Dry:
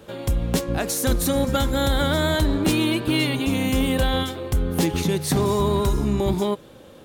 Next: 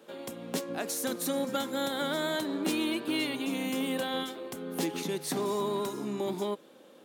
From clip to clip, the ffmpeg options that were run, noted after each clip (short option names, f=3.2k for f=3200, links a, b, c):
-af "highpass=f=210:w=0.5412,highpass=f=210:w=1.3066,volume=-8.5dB"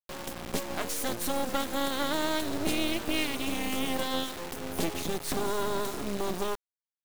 -af "acrusher=bits=4:dc=4:mix=0:aa=0.000001,volume=4.5dB"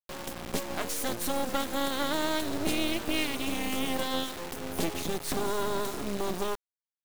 -af anull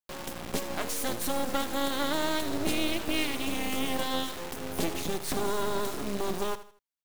-af "aecho=1:1:79|158|237:0.2|0.0698|0.0244"